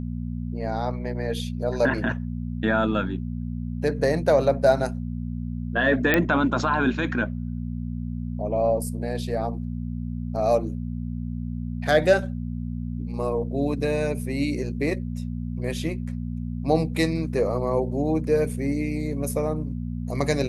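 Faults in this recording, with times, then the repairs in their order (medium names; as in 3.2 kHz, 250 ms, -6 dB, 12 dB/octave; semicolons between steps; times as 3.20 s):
hum 60 Hz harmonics 4 -30 dBFS
6.14 s: pop -6 dBFS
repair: de-click; de-hum 60 Hz, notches 4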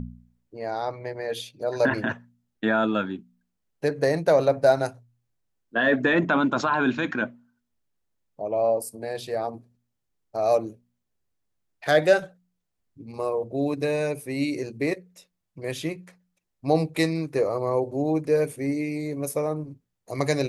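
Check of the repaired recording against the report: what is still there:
nothing left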